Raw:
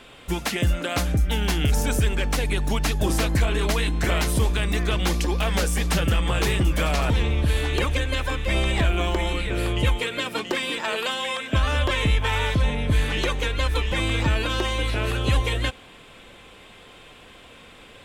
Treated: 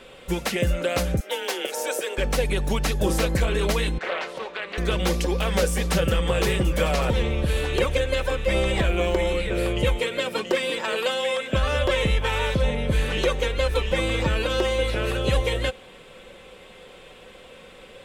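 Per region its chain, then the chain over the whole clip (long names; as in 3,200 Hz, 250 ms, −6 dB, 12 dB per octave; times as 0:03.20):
0:01.20–0:02.18: high-pass filter 360 Hz 24 dB per octave + frequency shifter +27 Hz
0:03.98–0:04.78: band-pass filter 640–2,800 Hz + highs frequency-modulated by the lows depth 0.35 ms
whole clip: parametric band 500 Hz +12 dB 0.3 octaves; comb filter 5.3 ms, depth 35%; level −1.5 dB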